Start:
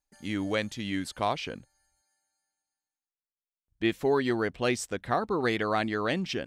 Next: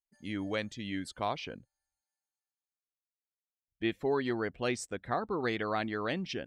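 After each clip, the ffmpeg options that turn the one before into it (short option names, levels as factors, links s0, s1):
-af "afftdn=nr=13:nf=-49,volume=0.562"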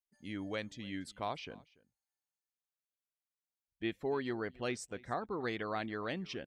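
-af "aecho=1:1:288:0.0708,volume=0.562"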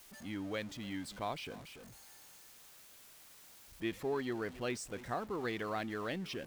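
-af "aeval=exprs='val(0)+0.5*0.00501*sgn(val(0))':c=same,volume=0.841"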